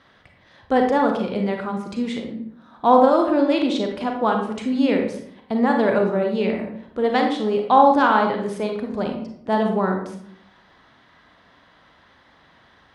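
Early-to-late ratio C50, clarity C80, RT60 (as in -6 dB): 4.5 dB, 8.5 dB, 0.65 s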